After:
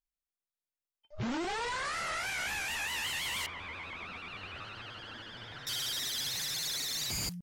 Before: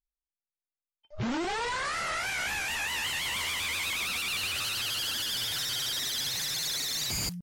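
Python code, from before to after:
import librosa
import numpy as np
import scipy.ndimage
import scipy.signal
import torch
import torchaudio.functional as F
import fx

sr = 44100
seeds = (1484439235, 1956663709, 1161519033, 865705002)

y = fx.lowpass(x, sr, hz=1600.0, slope=12, at=(3.46, 5.67))
y = F.gain(torch.from_numpy(y), -3.5).numpy()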